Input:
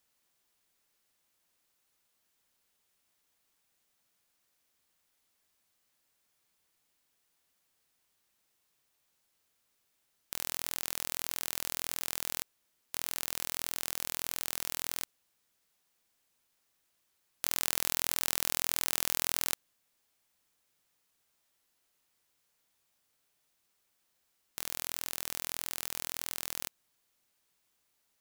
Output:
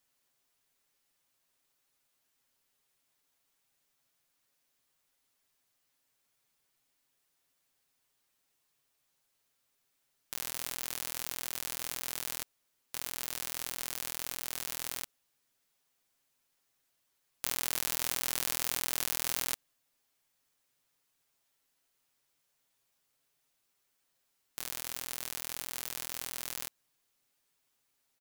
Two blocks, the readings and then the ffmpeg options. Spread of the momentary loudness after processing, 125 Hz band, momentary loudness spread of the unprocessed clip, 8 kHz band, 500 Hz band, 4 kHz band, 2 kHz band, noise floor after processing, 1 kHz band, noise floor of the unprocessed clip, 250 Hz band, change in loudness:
9 LU, −0.5 dB, 9 LU, −1.5 dB, −1.0 dB, −1.5 dB, −1.5 dB, −78 dBFS, −1.5 dB, −77 dBFS, −1.5 dB, −1.5 dB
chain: -af "aecho=1:1:7.4:0.56,volume=-2.5dB"

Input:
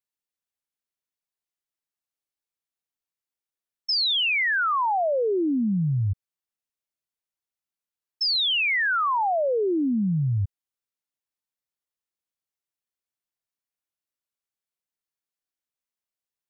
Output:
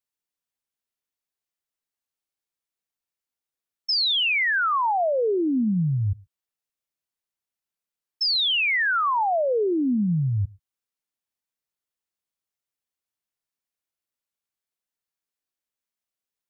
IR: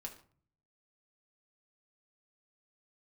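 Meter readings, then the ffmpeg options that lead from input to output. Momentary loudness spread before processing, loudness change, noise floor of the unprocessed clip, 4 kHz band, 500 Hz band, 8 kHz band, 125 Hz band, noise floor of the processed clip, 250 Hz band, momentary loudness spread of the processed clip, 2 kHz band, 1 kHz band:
7 LU, +1.0 dB, below −85 dBFS, +1.0 dB, +1.0 dB, can't be measured, +0.5 dB, below −85 dBFS, +1.0 dB, 8 LU, +1.0 dB, +1.0 dB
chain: -filter_complex "[0:a]asplit=2[link_01][link_02];[1:a]atrim=start_sample=2205,atrim=end_sample=6174[link_03];[link_02][link_03]afir=irnorm=-1:irlink=0,volume=-14dB[link_04];[link_01][link_04]amix=inputs=2:normalize=0"

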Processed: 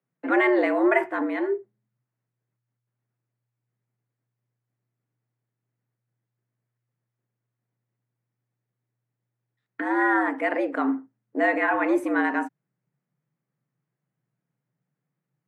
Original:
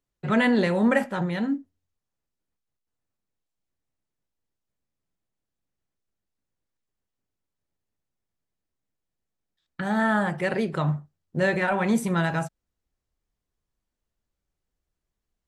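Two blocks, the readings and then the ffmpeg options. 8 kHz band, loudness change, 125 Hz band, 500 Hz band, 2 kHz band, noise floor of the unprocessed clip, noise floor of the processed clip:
below −10 dB, +1.0 dB, below −30 dB, +2.0 dB, +2.5 dB, −85 dBFS, −85 dBFS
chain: -af "afreqshift=120,highshelf=frequency=2800:width_type=q:width=1.5:gain=-11.5"

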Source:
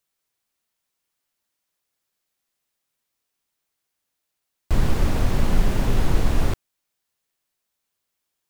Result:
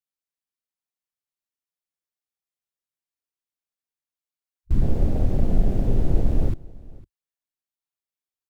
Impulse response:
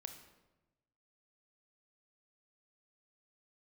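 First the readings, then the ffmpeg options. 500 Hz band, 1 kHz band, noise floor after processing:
−1.5 dB, −9.0 dB, below −85 dBFS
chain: -filter_complex "[0:a]afwtdn=0.0708,asplit=2[link_01][link_02];[link_02]aecho=0:1:504:0.0794[link_03];[link_01][link_03]amix=inputs=2:normalize=0"

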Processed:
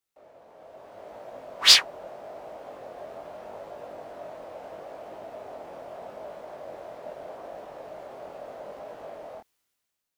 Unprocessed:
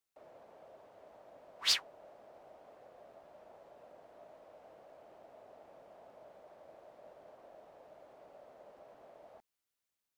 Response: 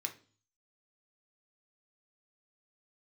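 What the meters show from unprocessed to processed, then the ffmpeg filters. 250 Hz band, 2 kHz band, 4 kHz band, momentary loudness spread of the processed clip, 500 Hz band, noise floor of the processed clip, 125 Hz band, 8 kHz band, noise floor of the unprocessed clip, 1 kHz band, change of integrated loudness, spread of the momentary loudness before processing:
+15.5 dB, +15.0 dB, +15.0 dB, 4 LU, +15.5 dB, −81 dBFS, +15.0 dB, +14.5 dB, below −85 dBFS, +15.5 dB, +15.0 dB, 3 LU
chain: -af "dynaudnorm=framelen=190:gausssize=9:maxgain=13dB,flanger=delay=18.5:depth=5.4:speed=0.79,volume=6dB"

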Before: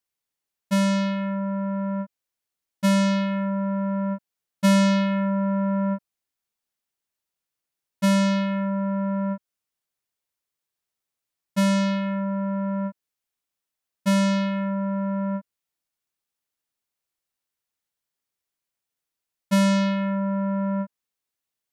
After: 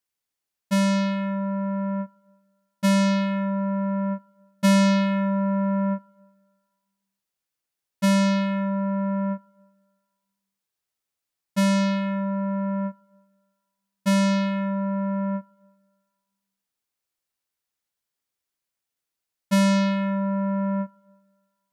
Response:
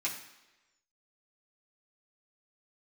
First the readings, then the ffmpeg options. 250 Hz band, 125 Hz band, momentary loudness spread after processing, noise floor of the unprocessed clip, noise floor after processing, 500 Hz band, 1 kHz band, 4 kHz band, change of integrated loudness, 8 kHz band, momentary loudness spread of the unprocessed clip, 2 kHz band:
0.0 dB, can't be measured, 10 LU, below −85 dBFS, −85 dBFS, 0.0 dB, +0.5 dB, 0.0 dB, 0.0 dB, +0.5 dB, 10 LU, +0.5 dB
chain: -filter_complex "[0:a]asplit=2[link_01][link_02];[1:a]atrim=start_sample=2205,asetrate=27342,aresample=44100[link_03];[link_02][link_03]afir=irnorm=-1:irlink=0,volume=-24.5dB[link_04];[link_01][link_04]amix=inputs=2:normalize=0"

